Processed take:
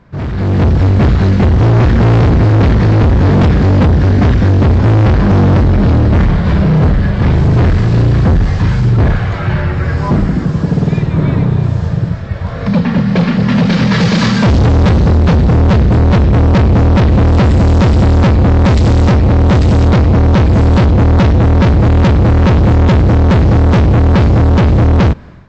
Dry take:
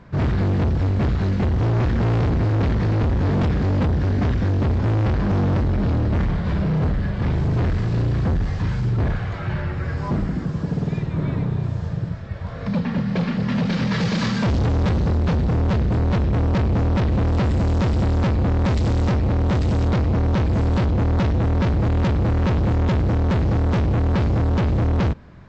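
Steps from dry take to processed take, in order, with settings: AGC gain up to 11.5 dB

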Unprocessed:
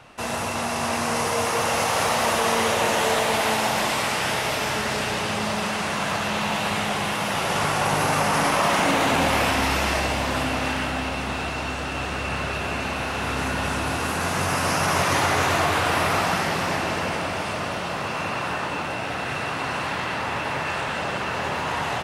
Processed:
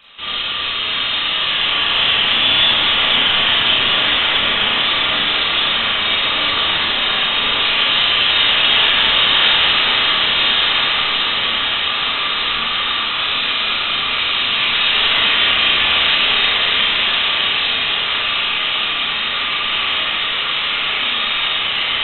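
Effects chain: HPF 110 Hz; diffused feedback echo 1.28 s, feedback 58%, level -4.5 dB; inverted band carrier 3900 Hz; Schroeder reverb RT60 0.68 s, combs from 27 ms, DRR -6.5 dB; gain -1 dB

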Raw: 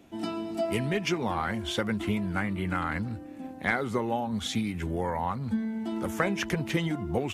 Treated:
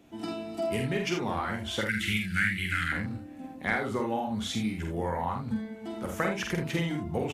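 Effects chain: 1.81–2.92 EQ curve 170 Hz 0 dB, 930 Hz -27 dB, 1600 Hz +11 dB; on a send: early reflections 47 ms -4 dB, 79 ms -8 dB; on the sum: gain -3 dB

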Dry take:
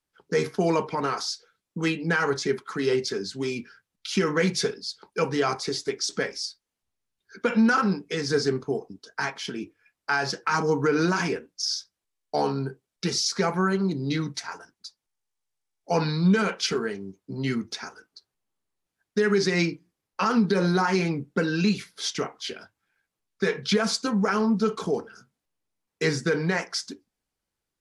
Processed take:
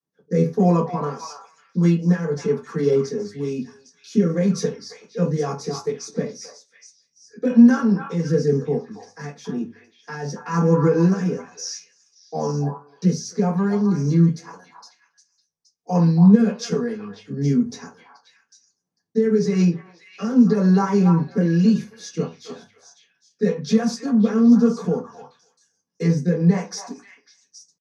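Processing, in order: rotary speaker horn 1 Hz; delay with a stepping band-pass 0.272 s, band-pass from 950 Hz, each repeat 1.4 oct, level -4.5 dB; reverb RT60 0.20 s, pre-delay 3 ms, DRR -8.5 dB; pitch shift +1 st; gain -17.5 dB

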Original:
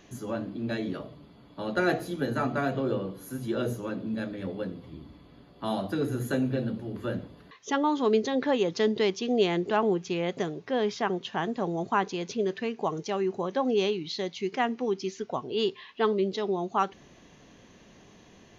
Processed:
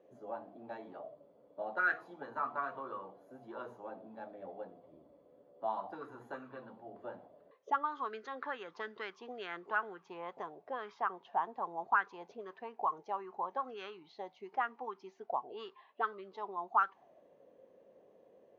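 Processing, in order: auto-wah 510–1500 Hz, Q 6.8, up, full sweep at -21 dBFS; gain +4.5 dB

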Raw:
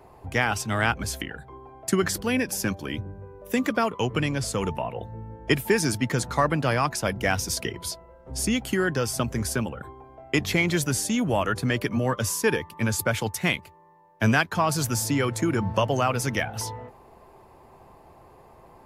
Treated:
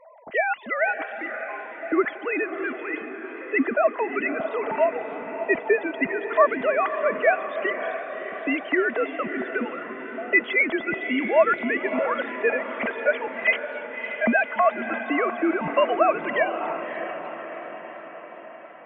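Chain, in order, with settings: sine-wave speech; low shelf 470 Hz -4 dB; small resonant body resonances 650/2000 Hz, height 12 dB, ringing for 45 ms; on a send: diffused feedback echo 0.6 s, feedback 58%, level -9 dB; on the sum: warbling echo 0.293 s, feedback 55%, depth 213 cents, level -22 dB

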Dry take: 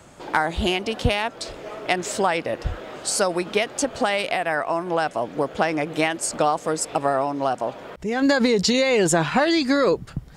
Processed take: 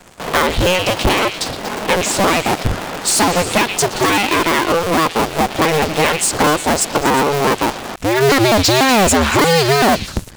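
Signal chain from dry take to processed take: cycle switcher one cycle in 2, inverted; delay with a stepping band-pass 0.119 s, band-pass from 3300 Hz, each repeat 0.7 oct, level -8.5 dB; sample leveller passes 3

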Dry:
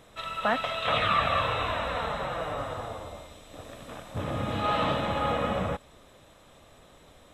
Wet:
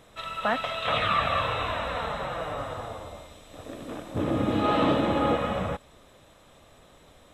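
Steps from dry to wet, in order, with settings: 3.66–5.36 bell 320 Hz +12.5 dB 1.1 oct

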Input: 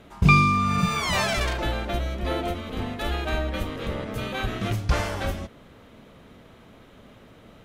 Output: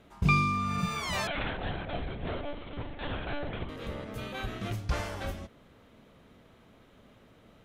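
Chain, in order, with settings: 1.27–3.69 monotone LPC vocoder at 8 kHz 290 Hz; gain -8 dB

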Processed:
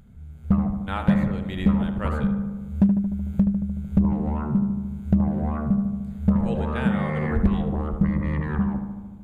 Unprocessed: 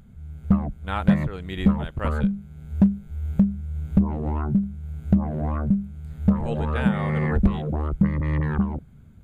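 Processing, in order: darkening echo 75 ms, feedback 73%, low-pass 2000 Hz, level -7 dB; gain -1.5 dB

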